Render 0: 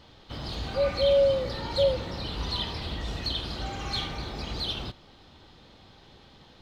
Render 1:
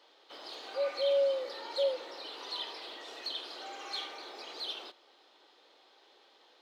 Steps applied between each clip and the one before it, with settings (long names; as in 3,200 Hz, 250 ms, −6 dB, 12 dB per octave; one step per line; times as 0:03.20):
inverse Chebyshev high-pass filter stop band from 180 Hz, stop band 40 dB
level −6.5 dB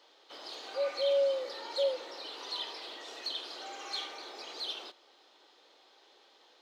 parametric band 6,500 Hz +4.5 dB 0.74 octaves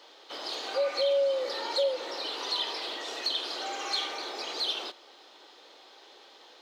downward compressor 2.5 to 1, threshold −35 dBFS, peak gain reduction 7 dB
level +8.5 dB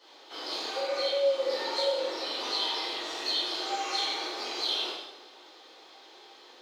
dense smooth reverb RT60 1 s, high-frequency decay 0.9×, DRR −9.5 dB
level −8.5 dB